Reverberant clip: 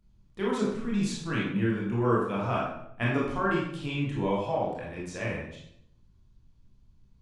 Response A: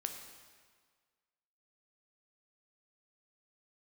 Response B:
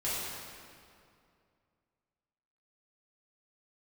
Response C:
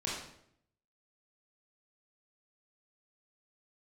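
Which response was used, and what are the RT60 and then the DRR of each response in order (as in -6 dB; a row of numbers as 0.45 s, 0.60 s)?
C; 1.7 s, 2.4 s, 0.70 s; 4.5 dB, -11.0 dB, -6.0 dB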